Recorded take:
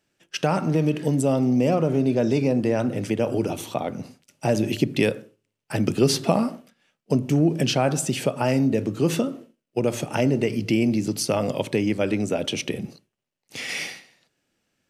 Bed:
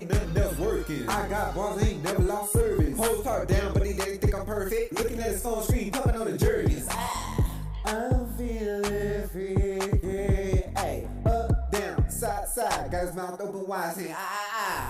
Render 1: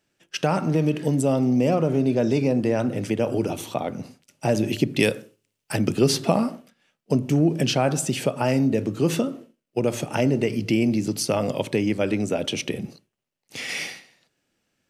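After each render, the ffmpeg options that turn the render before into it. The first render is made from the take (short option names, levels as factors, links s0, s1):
-filter_complex "[0:a]asettb=1/sr,asplit=3[s0][s1][s2];[s0]atrim=end=4.994[s3];[s1]atrim=start=4.99:end=5.76,asetpts=PTS-STARTPTS,afade=t=in:d=0.004:c=qsin,afade=t=out:st=0.766:d=0.004:c=qsin,highshelf=f=3000:g=8.5[s4];[s2]atrim=start=5.756[s5];[s3][s4]acrossfade=d=0.004:c1=hsin:c2=qsin[s6];[s6][s5]acrossfade=d=0.004:c1=qsin:c2=hsin"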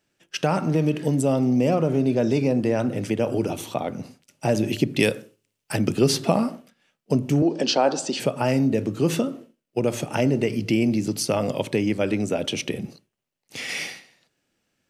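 -filter_complex "[0:a]asettb=1/sr,asplit=3[s0][s1][s2];[s0]atrim=end=7.424[s3];[s1]atrim=start=7.42:end=8.2,asetpts=PTS-STARTPTS,afade=t=in:d=0.004:c=qsin,afade=t=out:st=0.776:d=0.004:c=qsin,highpass=f=230:w=0.5412,highpass=f=230:w=1.3066,equalizer=f=520:t=q:w=4:g=4,equalizer=f=890:t=q:w=4:g=7,equalizer=f=2200:t=q:w=4:g=-6,equalizer=f=4500:t=q:w=4:g=8,lowpass=f=7100:w=0.5412,lowpass=f=7100:w=1.3066[s4];[s2]atrim=start=8.196[s5];[s3][s4]acrossfade=d=0.004:c1=hsin:c2=qsin[s6];[s6][s5]acrossfade=d=0.004:c1=qsin:c2=hsin"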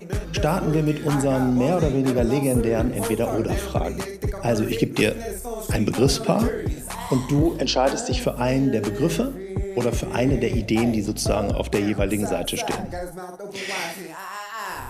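-filter_complex "[1:a]volume=0.794[s0];[0:a][s0]amix=inputs=2:normalize=0"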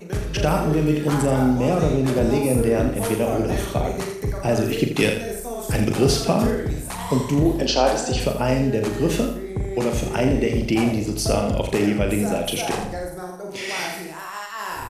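-filter_complex "[0:a]asplit=2[s0][s1];[s1]adelay=39,volume=0.447[s2];[s0][s2]amix=inputs=2:normalize=0,aecho=1:1:82|164|246|328:0.398|0.127|0.0408|0.013"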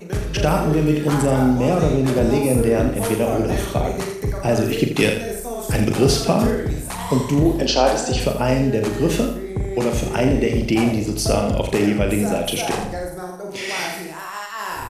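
-af "volume=1.26"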